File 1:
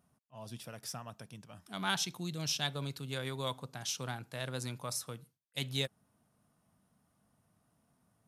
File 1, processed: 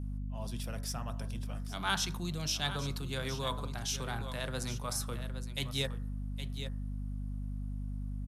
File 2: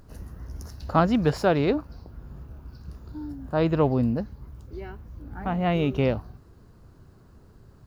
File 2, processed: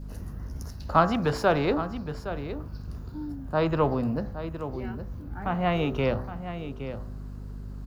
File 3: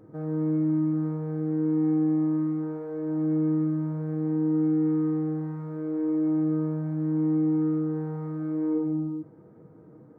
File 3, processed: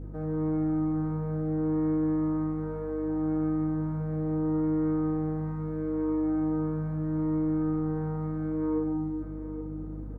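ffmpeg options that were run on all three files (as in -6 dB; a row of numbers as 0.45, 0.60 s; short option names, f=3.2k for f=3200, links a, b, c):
-filter_complex "[0:a]bandreject=f=63.09:t=h:w=4,bandreject=f=126.18:t=h:w=4,bandreject=f=189.27:t=h:w=4,bandreject=f=252.36:t=h:w=4,bandreject=f=315.45:t=h:w=4,bandreject=f=378.54:t=h:w=4,bandreject=f=441.63:t=h:w=4,bandreject=f=504.72:t=h:w=4,bandreject=f=567.81:t=h:w=4,bandreject=f=630.9:t=h:w=4,bandreject=f=693.99:t=h:w=4,bandreject=f=757.08:t=h:w=4,bandreject=f=820.17:t=h:w=4,bandreject=f=883.26:t=h:w=4,bandreject=f=946.35:t=h:w=4,bandreject=f=1.00944k:t=h:w=4,bandreject=f=1.07253k:t=h:w=4,bandreject=f=1.13562k:t=h:w=4,bandreject=f=1.19871k:t=h:w=4,bandreject=f=1.2618k:t=h:w=4,bandreject=f=1.32489k:t=h:w=4,bandreject=f=1.38798k:t=h:w=4,bandreject=f=1.45107k:t=h:w=4,bandreject=f=1.51416k:t=h:w=4,bandreject=f=1.57725k:t=h:w=4,bandreject=f=1.64034k:t=h:w=4,bandreject=f=1.70343k:t=h:w=4,bandreject=f=1.76652k:t=h:w=4,bandreject=f=1.82961k:t=h:w=4,bandreject=f=1.8927k:t=h:w=4,bandreject=f=1.95579k:t=h:w=4,adynamicequalizer=threshold=0.00562:dfrequency=1200:dqfactor=1.8:tfrequency=1200:tqfactor=1.8:attack=5:release=100:ratio=0.375:range=2:mode=boostabove:tftype=bell,aecho=1:1:816:0.237,acrossover=split=100|400[a][b][c];[b]asoftclip=type=tanh:threshold=-27dB[d];[a][d][c]amix=inputs=3:normalize=0,aeval=exprs='val(0)+0.00891*(sin(2*PI*50*n/s)+sin(2*PI*2*50*n/s)/2+sin(2*PI*3*50*n/s)/3+sin(2*PI*4*50*n/s)/4+sin(2*PI*5*50*n/s)/5)':c=same,areverse,acompressor=mode=upward:threshold=-31dB:ratio=2.5,areverse"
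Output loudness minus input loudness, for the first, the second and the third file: +1.0, -4.0, -2.5 LU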